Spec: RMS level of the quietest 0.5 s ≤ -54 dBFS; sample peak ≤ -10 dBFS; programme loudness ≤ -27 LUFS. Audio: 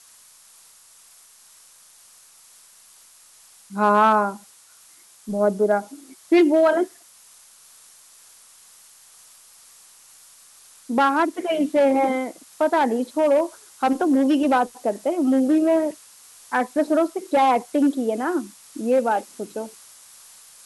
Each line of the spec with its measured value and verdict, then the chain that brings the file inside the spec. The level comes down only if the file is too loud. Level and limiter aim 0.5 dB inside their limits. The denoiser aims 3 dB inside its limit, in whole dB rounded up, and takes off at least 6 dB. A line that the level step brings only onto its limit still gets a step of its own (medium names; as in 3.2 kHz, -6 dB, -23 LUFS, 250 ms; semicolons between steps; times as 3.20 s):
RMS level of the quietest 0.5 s -51 dBFS: fail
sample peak -6.0 dBFS: fail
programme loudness -21.0 LUFS: fail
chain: trim -6.5 dB